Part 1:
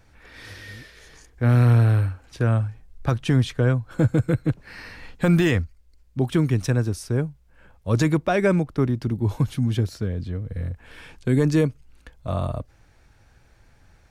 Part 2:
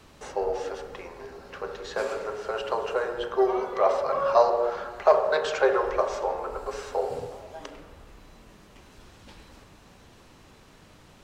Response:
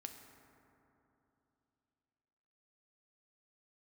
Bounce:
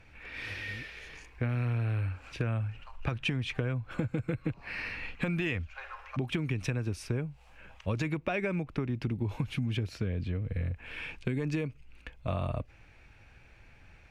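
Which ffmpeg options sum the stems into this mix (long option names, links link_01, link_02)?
-filter_complex "[0:a]aemphasis=mode=reproduction:type=cd,acompressor=threshold=-20dB:ratio=6,volume=-2dB,asplit=2[link_01][link_02];[1:a]highpass=frequency=870:width=0.5412,highpass=frequency=870:width=1.3066,adelay=150,volume=-15dB[link_03];[link_02]apad=whole_len=501894[link_04];[link_03][link_04]sidechaincompress=threshold=-52dB:ratio=12:attack=5.7:release=108[link_05];[link_01][link_05]amix=inputs=2:normalize=0,equalizer=frequency=2500:width_type=o:width=0.6:gain=13.5,acompressor=threshold=-28dB:ratio=6"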